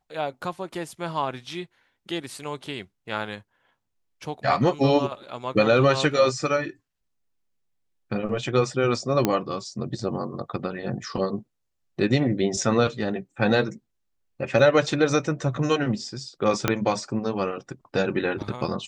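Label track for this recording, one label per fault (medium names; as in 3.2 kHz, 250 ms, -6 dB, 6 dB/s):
9.250000	9.250000	pop -7 dBFS
14.590000	14.590000	dropout 2.2 ms
16.680000	16.680000	pop -5 dBFS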